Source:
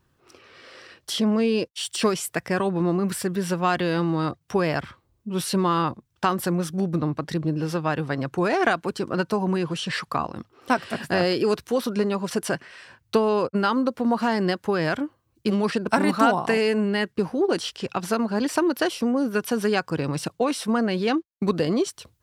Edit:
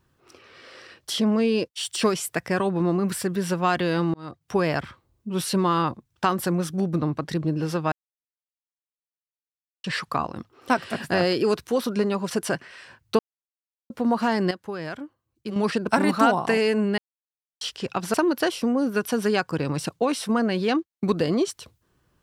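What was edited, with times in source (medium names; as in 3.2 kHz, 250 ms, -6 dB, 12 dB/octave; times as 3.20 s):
4.14–4.57 s: fade in
7.92–9.84 s: mute
13.19–13.90 s: mute
14.51–15.56 s: gain -9 dB
16.98–17.61 s: mute
18.14–18.53 s: delete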